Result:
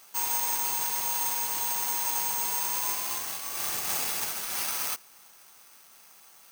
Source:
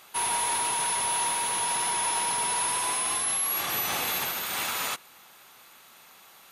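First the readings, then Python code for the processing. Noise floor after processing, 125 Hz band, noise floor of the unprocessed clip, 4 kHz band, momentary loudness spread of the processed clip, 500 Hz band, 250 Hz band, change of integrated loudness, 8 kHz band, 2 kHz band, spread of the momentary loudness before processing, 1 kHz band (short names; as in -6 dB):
-55 dBFS, -6.0 dB, -53 dBFS, -4.5 dB, 4 LU, -6.0 dB, -6.0 dB, -1.5 dB, -2.5 dB, -6.0 dB, 4 LU, -6.0 dB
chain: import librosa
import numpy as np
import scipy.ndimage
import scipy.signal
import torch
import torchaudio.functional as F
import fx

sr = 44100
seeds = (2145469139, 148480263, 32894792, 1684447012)

y = (np.kron(scipy.signal.resample_poly(x, 1, 6), np.eye(6)[0]) * 6)[:len(x)]
y = y * 10.0 ** (-6.0 / 20.0)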